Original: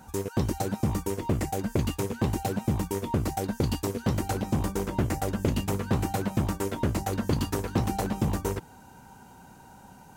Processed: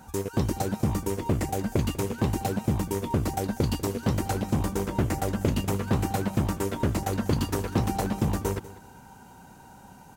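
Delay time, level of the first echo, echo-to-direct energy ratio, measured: 194 ms, −17.5 dB, −17.0 dB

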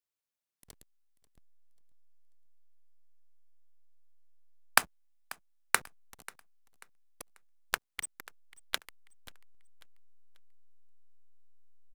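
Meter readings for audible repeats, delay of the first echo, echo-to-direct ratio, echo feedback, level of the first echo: 2, 539 ms, −19.5 dB, 35%, −20.0 dB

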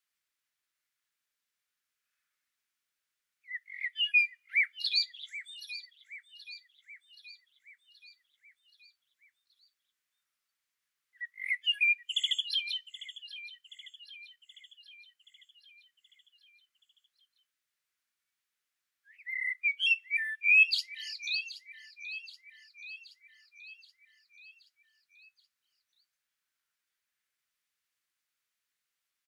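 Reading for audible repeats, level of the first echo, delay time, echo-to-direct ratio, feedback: 5, −15.5 dB, 776 ms, −13.5 dB, 58%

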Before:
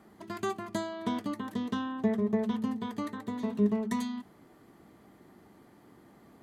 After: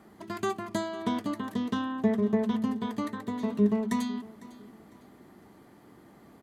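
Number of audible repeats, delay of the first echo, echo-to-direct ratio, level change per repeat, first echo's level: 2, 503 ms, −19.0 dB, −9.5 dB, −19.5 dB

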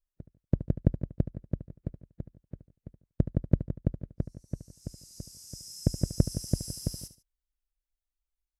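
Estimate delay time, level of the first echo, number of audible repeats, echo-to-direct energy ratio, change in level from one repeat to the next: 73 ms, −13.0 dB, 2, −12.5 dB, −10.0 dB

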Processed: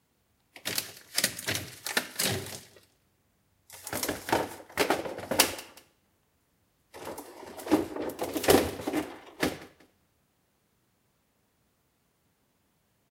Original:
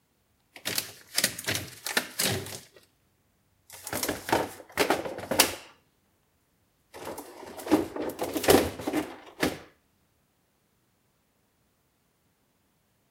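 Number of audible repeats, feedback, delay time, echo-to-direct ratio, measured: 2, 34%, 187 ms, −21.5 dB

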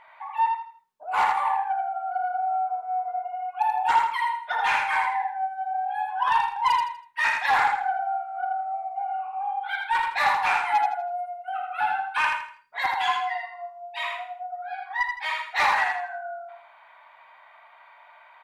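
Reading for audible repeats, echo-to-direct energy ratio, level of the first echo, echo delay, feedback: 4, −3.5 dB, −4.0 dB, 81 ms, 33%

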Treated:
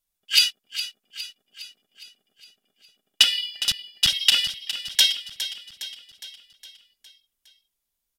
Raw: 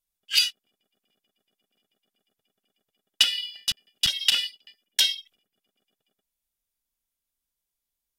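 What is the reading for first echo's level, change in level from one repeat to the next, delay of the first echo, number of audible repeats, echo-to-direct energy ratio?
−12.0 dB, −5.5 dB, 411 ms, 5, −10.5 dB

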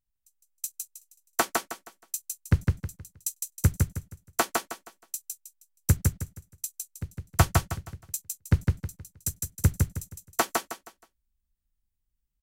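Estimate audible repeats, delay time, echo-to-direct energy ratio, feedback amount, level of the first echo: 4, 158 ms, −2.5 dB, 30%, −3.0 dB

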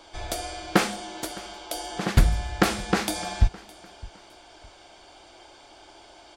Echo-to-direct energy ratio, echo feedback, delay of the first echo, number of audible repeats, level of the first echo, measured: −21.0 dB, 29%, 611 ms, 2, −21.5 dB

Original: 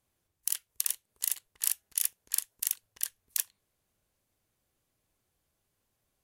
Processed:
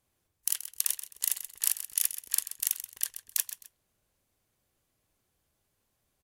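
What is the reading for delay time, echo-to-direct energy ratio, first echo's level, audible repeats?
130 ms, −11.5 dB, −12.0 dB, 2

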